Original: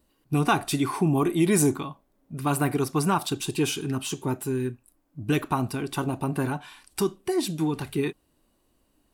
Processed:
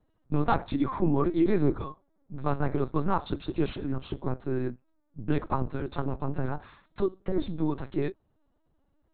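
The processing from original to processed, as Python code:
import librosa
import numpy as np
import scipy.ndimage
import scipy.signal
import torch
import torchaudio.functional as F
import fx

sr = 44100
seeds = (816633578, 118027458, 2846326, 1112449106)

y = fx.lpc_vocoder(x, sr, seeds[0], excitation='pitch_kept', order=8)
y = fx.peak_eq(y, sr, hz=2800.0, db=-12.5, octaves=0.85)
y = y * librosa.db_to_amplitude(-1.5)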